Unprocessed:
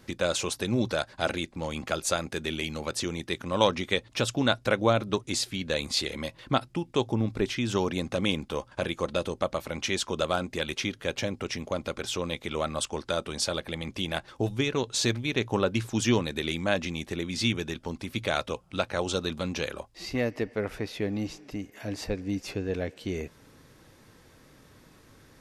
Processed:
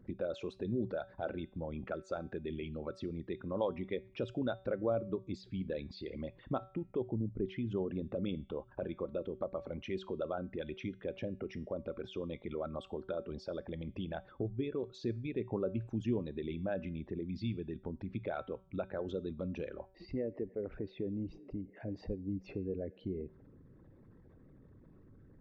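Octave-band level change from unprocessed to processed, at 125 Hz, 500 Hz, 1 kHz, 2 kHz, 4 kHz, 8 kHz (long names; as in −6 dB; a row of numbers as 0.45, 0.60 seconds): −8.5 dB, −8.0 dB, −14.5 dB, −18.5 dB, −23.5 dB, below −30 dB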